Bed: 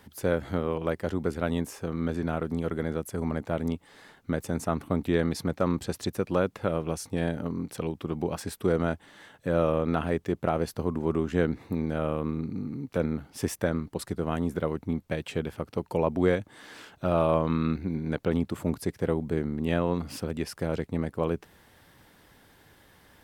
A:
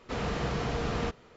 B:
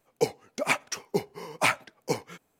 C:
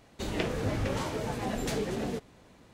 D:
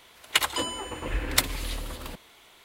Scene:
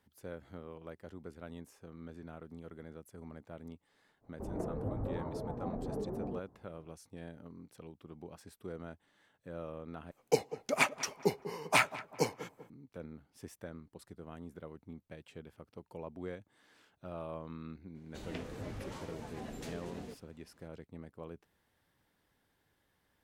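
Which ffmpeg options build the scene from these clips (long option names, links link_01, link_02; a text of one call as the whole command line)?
ffmpeg -i bed.wav -i cue0.wav -i cue1.wav -i cue2.wav -filter_complex "[3:a]asplit=2[link_01][link_02];[0:a]volume=-19dB[link_03];[link_01]lowpass=frequency=1000:width=0.5412,lowpass=frequency=1000:width=1.3066[link_04];[2:a]asplit=2[link_05][link_06];[link_06]adelay=195,lowpass=frequency=1400:poles=1,volume=-14dB,asplit=2[link_07][link_08];[link_08]adelay=195,lowpass=frequency=1400:poles=1,volume=0.43,asplit=2[link_09][link_10];[link_10]adelay=195,lowpass=frequency=1400:poles=1,volume=0.43,asplit=2[link_11][link_12];[link_12]adelay=195,lowpass=frequency=1400:poles=1,volume=0.43[link_13];[link_05][link_07][link_09][link_11][link_13]amix=inputs=5:normalize=0[link_14];[link_03]asplit=2[link_15][link_16];[link_15]atrim=end=10.114[link_17];[link_14]atrim=end=2.59,asetpts=PTS-STARTPTS,volume=-3dB[link_18];[link_16]atrim=start=12.696[link_19];[link_04]atrim=end=2.73,asetpts=PTS-STARTPTS,volume=-6.5dB,afade=type=in:duration=0.05,afade=type=out:start_time=2.68:duration=0.05,adelay=4200[link_20];[link_02]atrim=end=2.73,asetpts=PTS-STARTPTS,volume=-13dB,afade=type=in:duration=0.004:curve=hsin,afade=type=out:start_time=2.726:duration=0.004:curve=hsin,adelay=17950[link_21];[link_17][link_18]acrossfade=duration=0.004:curve1=hsin:curve2=hsin[link_22];[link_22][link_19]acrossfade=duration=0.004:curve1=hsin:curve2=hsin[link_23];[link_23][link_20][link_21]amix=inputs=3:normalize=0" out.wav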